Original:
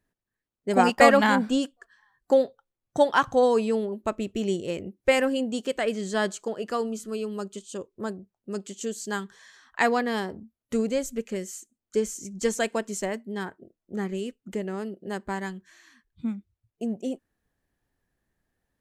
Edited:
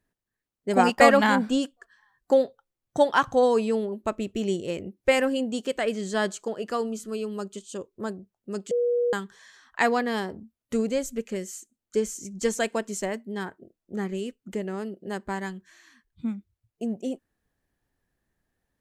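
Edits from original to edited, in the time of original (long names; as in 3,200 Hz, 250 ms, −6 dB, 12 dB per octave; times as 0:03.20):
0:08.71–0:09.13: beep over 482 Hz −20.5 dBFS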